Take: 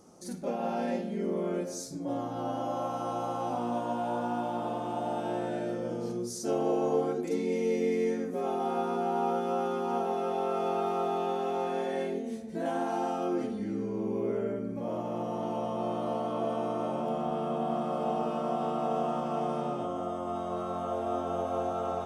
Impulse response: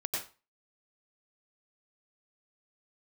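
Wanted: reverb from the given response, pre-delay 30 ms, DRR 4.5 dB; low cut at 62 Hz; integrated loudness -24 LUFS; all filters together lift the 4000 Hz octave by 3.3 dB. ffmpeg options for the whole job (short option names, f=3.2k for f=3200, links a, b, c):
-filter_complex "[0:a]highpass=62,equalizer=f=4k:t=o:g=4.5,asplit=2[a][b];[1:a]atrim=start_sample=2205,adelay=30[c];[b][c]afir=irnorm=-1:irlink=0,volume=-8.5dB[d];[a][d]amix=inputs=2:normalize=0,volume=6dB"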